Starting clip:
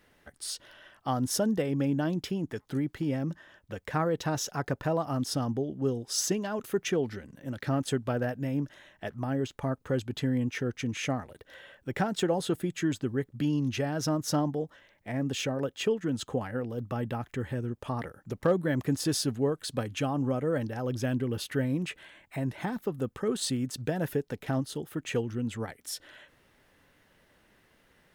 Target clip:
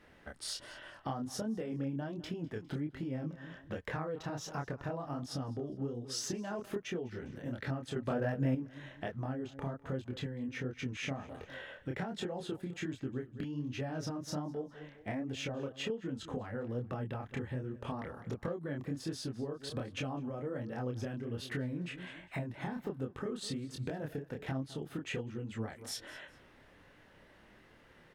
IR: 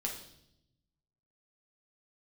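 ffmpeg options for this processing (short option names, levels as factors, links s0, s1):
-filter_complex "[0:a]aemphasis=mode=reproduction:type=50kf,aecho=1:1:203|406:0.1|0.027,acompressor=threshold=0.0112:ratio=12,flanger=delay=22.5:depth=6.9:speed=1.3,asettb=1/sr,asplit=3[s0][s1][s2];[s0]atrim=end=7.964[s3];[s1]atrim=start=7.96:end=8.55,asetpts=PTS-STARTPTS,afade=t=in:d=0.004:c=qsin,afade=t=out:st=0.586:d=0.004:c=qsin,acontrast=49[s4];[s2]atrim=start=8.546[s5];[s3][s4]acrossfade=d=0.004:c1=hsin:c2=qsin[s6];[s6][s5]acrossfade=d=0.004:c1=qsin:c2=hsin,volume=2.24"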